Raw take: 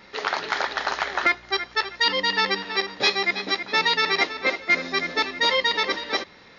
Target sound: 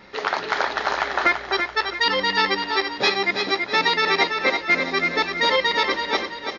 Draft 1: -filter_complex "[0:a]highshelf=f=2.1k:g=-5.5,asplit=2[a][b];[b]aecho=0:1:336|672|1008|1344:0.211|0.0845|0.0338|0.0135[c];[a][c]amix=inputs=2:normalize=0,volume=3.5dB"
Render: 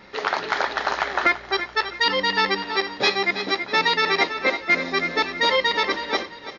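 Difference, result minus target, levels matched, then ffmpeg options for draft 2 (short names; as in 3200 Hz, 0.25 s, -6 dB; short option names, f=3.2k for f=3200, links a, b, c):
echo-to-direct -7 dB
-filter_complex "[0:a]highshelf=f=2.1k:g=-5.5,asplit=2[a][b];[b]aecho=0:1:336|672|1008|1344|1680:0.473|0.189|0.0757|0.0303|0.0121[c];[a][c]amix=inputs=2:normalize=0,volume=3.5dB"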